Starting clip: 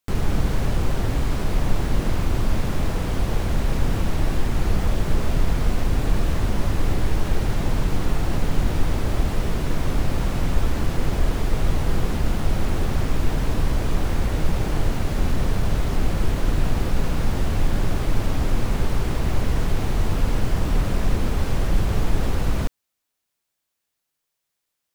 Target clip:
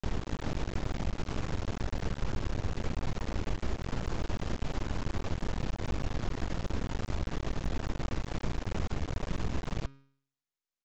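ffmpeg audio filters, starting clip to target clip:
ffmpeg -i in.wav -af "asetrate=101430,aresample=44100,bandreject=frequency=136.6:width_type=h:width=4,bandreject=frequency=273.2:width_type=h:width=4,bandreject=frequency=409.8:width_type=h:width=4,bandreject=frequency=546.4:width_type=h:width=4,bandreject=frequency=683:width_type=h:width=4,bandreject=frequency=819.6:width_type=h:width=4,bandreject=frequency=956.2:width_type=h:width=4,bandreject=frequency=1092.8:width_type=h:width=4,bandreject=frequency=1229.4:width_type=h:width=4,bandreject=frequency=1366:width_type=h:width=4,bandreject=frequency=1502.6:width_type=h:width=4,bandreject=frequency=1639.2:width_type=h:width=4,bandreject=frequency=1775.8:width_type=h:width=4,bandreject=frequency=1912.4:width_type=h:width=4,bandreject=frequency=2049:width_type=h:width=4,bandreject=frequency=2185.6:width_type=h:width=4,bandreject=frequency=2322.2:width_type=h:width=4,bandreject=frequency=2458.8:width_type=h:width=4,bandreject=frequency=2595.4:width_type=h:width=4,bandreject=frequency=2732:width_type=h:width=4,bandreject=frequency=2868.6:width_type=h:width=4,bandreject=frequency=3005.2:width_type=h:width=4,bandreject=frequency=3141.8:width_type=h:width=4,bandreject=frequency=3278.4:width_type=h:width=4,bandreject=frequency=3415:width_type=h:width=4,bandreject=frequency=3551.6:width_type=h:width=4,bandreject=frequency=3688.2:width_type=h:width=4,bandreject=frequency=3824.8:width_type=h:width=4,bandreject=frequency=3961.4:width_type=h:width=4,bandreject=frequency=4098:width_type=h:width=4,bandreject=frequency=4234.6:width_type=h:width=4,bandreject=frequency=4371.2:width_type=h:width=4,bandreject=frequency=4507.8:width_type=h:width=4,bandreject=frequency=4644.4:width_type=h:width=4,bandreject=frequency=4781:width_type=h:width=4,bandreject=frequency=4917.6:width_type=h:width=4,bandreject=frequency=5054.2:width_type=h:width=4,bandreject=frequency=5190.8:width_type=h:width=4,aresample=16000,aeval=exprs='max(val(0),0)':channel_layout=same,aresample=44100,acompressor=threshold=-21dB:ratio=3,volume=-6.5dB" out.wav

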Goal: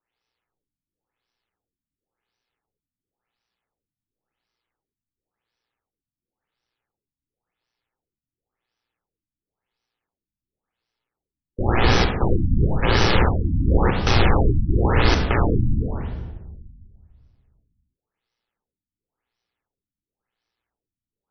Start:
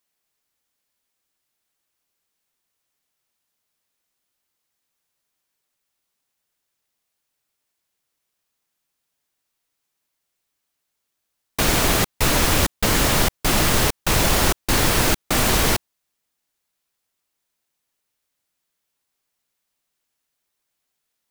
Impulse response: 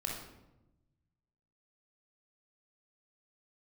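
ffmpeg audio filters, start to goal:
-filter_complex "[0:a]aeval=exprs='val(0)*sin(2*PI*59*n/s)':channel_layout=same,asplit=2[link_01][link_02];[1:a]atrim=start_sample=2205,asetrate=29547,aresample=44100[link_03];[link_02][link_03]afir=irnorm=-1:irlink=0,volume=-2dB[link_04];[link_01][link_04]amix=inputs=2:normalize=0,afftfilt=real='re*lt(b*sr/1024,290*pow(6200/290,0.5+0.5*sin(2*PI*0.94*pts/sr)))':imag='im*lt(b*sr/1024,290*pow(6200/290,0.5+0.5*sin(2*PI*0.94*pts/sr)))':win_size=1024:overlap=0.75,volume=-2dB"

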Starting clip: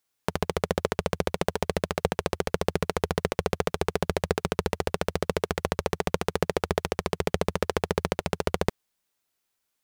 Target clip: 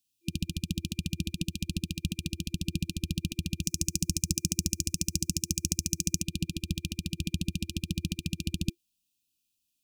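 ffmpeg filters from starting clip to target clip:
ffmpeg -i in.wav -filter_complex "[0:a]asplit=3[link_01][link_02][link_03];[link_01]afade=type=out:start_time=3.62:duration=0.02[link_04];[link_02]highshelf=frequency=4600:width_type=q:width=3:gain=9,afade=type=in:start_time=3.62:duration=0.02,afade=type=out:start_time=6.21:duration=0.02[link_05];[link_03]afade=type=in:start_time=6.21:duration=0.02[link_06];[link_04][link_05][link_06]amix=inputs=3:normalize=0,afftfilt=real='re*(1-between(b*sr/4096,340,2400))':imag='im*(1-between(b*sr/4096,340,2400))':win_size=4096:overlap=0.75" out.wav

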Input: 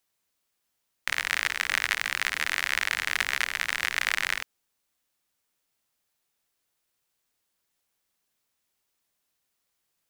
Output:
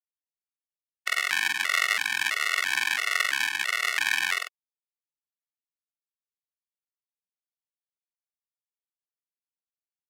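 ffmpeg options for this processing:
ffmpeg -i in.wav -filter_complex "[0:a]afftfilt=real='re*gte(hypot(re,im),0.00282)':imag='im*gte(hypot(re,im),0.00282)':win_size=1024:overlap=0.75,highpass=240,equalizer=frequency=510:width=6.6:gain=-10,asplit=2[link_01][link_02];[link_02]adelay=45,volume=-4dB[link_03];[link_01][link_03]amix=inputs=2:normalize=0,afftfilt=real='re*gt(sin(2*PI*1.5*pts/sr)*(1-2*mod(floor(b*sr/1024/370),2)),0)':imag='im*gt(sin(2*PI*1.5*pts/sr)*(1-2*mod(floor(b*sr/1024/370),2)),0)':win_size=1024:overlap=0.75,volume=4dB" out.wav

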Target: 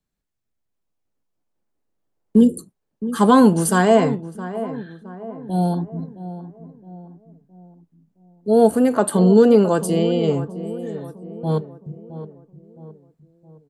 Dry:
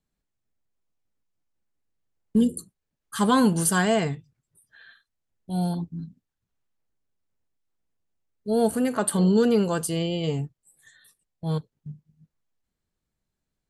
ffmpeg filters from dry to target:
ffmpeg -i in.wav -filter_complex "[0:a]asplit=2[link_01][link_02];[link_02]adelay=666,lowpass=frequency=1200:poles=1,volume=-12.5dB,asplit=2[link_03][link_04];[link_04]adelay=666,lowpass=frequency=1200:poles=1,volume=0.48,asplit=2[link_05][link_06];[link_06]adelay=666,lowpass=frequency=1200:poles=1,volume=0.48,asplit=2[link_07][link_08];[link_08]adelay=666,lowpass=frequency=1200:poles=1,volume=0.48,asplit=2[link_09][link_10];[link_10]adelay=666,lowpass=frequency=1200:poles=1,volume=0.48[link_11];[link_01][link_03][link_05][link_07][link_09][link_11]amix=inputs=6:normalize=0,acrossover=split=200|1100[link_12][link_13][link_14];[link_13]dynaudnorm=framelen=260:gausssize=9:maxgain=10.5dB[link_15];[link_12][link_15][link_14]amix=inputs=3:normalize=0" out.wav

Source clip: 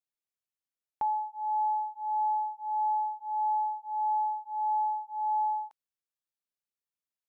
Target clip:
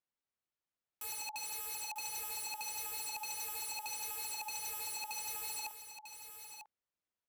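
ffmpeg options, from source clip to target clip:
ffmpeg -i in.wav -af "aemphasis=mode=reproduction:type=75fm,aeval=exprs='(mod(94.4*val(0)+1,2)-1)/94.4':channel_layout=same,aecho=1:1:946:0.355,volume=2dB" out.wav

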